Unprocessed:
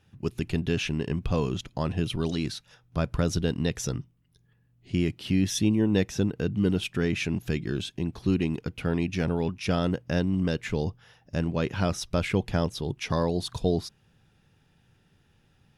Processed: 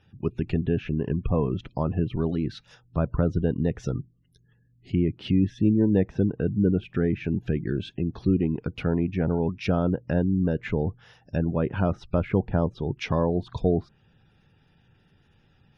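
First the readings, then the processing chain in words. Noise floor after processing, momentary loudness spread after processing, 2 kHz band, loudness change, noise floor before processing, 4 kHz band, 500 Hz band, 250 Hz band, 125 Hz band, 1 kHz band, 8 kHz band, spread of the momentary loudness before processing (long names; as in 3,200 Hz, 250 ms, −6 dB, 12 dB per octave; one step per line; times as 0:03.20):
−63 dBFS, 7 LU, −3.5 dB, +2.0 dB, −65 dBFS, −9.0 dB, +2.5 dB, +2.5 dB, +2.5 dB, +0.5 dB, below −15 dB, 7 LU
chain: gate on every frequency bin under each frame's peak −30 dB strong
treble cut that deepens with the level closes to 1,200 Hz, closed at −24 dBFS
level +2.5 dB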